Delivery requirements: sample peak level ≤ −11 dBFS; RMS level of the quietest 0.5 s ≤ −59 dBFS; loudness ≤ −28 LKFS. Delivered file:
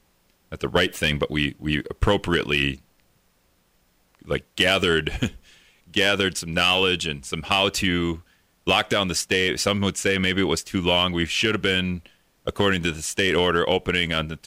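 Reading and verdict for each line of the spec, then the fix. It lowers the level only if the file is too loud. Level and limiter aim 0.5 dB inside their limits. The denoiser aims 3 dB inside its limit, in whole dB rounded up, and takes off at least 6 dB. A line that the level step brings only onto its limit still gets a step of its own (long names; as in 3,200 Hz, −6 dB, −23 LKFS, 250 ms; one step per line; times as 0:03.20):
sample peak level −8.0 dBFS: out of spec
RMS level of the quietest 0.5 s −64 dBFS: in spec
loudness −22.0 LKFS: out of spec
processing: level −6.5 dB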